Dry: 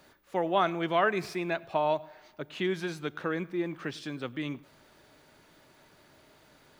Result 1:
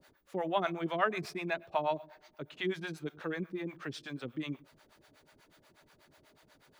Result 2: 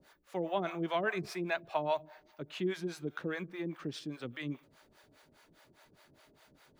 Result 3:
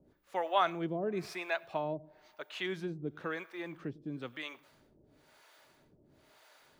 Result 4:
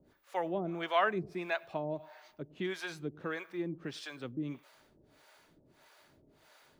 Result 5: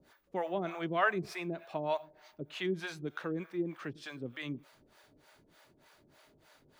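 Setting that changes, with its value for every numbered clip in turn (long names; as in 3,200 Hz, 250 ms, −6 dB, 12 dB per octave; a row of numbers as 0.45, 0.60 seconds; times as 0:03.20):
two-band tremolo in antiphase, speed: 8.2, 4.9, 1, 1.6, 3.3 Hertz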